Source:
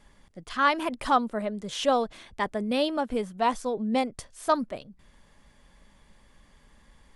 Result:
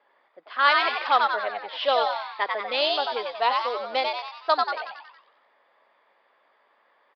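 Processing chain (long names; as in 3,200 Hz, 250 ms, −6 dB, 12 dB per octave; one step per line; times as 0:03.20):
low-pass that shuts in the quiet parts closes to 1,200 Hz, open at −19 dBFS
high-pass filter 440 Hz 24 dB per octave
high-shelf EQ 2,500 Hz +11.5 dB
on a send: echo with shifted repeats 92 ms, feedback 53%, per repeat +100 Hz, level −3 dB
on the sum: downsampling to 11,025 Hz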